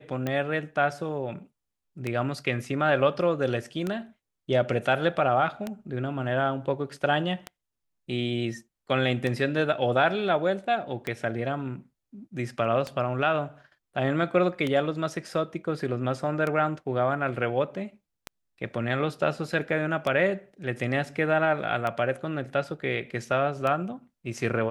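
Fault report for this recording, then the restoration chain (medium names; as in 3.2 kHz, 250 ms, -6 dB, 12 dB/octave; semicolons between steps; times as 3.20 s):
tick 33 1/3 rpm -16 dBFS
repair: de-click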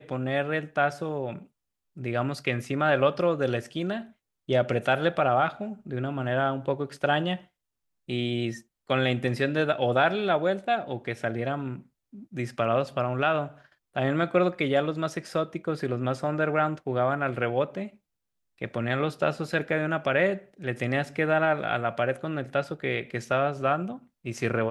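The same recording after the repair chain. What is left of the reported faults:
nothing left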